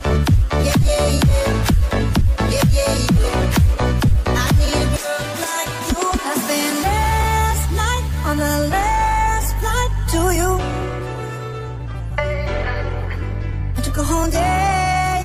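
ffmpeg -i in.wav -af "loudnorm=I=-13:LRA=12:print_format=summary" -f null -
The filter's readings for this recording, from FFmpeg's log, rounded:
Input Integrated:    -18.8 LUFS
Input True Peak:      -5.9 dBTP
Input LRA:             3.4 LU
Input Threshold:     -28.8 LUFS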